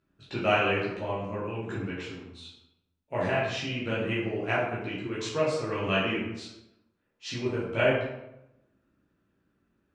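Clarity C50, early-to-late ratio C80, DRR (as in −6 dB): 1.5 dB, 5.0 dB, −8.5 dB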